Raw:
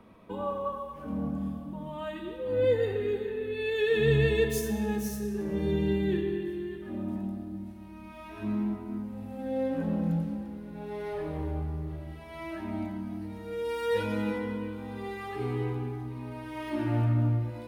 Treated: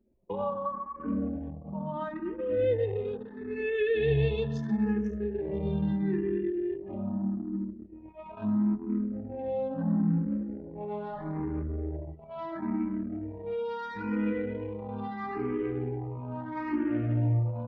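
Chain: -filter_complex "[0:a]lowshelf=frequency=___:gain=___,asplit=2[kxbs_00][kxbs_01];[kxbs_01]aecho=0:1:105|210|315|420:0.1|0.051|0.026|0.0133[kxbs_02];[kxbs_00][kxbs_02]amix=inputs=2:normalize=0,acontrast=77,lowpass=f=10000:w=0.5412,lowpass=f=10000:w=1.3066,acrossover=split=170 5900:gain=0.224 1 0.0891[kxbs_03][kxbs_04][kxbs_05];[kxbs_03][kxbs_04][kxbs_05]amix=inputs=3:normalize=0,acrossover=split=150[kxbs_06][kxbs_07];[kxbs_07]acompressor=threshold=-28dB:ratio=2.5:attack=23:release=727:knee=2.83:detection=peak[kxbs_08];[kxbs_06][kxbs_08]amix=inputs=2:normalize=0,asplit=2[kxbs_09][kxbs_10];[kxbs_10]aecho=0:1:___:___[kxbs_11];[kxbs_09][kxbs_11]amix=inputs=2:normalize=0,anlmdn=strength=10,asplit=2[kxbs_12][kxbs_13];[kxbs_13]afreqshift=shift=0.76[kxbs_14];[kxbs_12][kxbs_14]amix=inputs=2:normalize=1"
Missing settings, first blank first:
180, 8, 438, 0.15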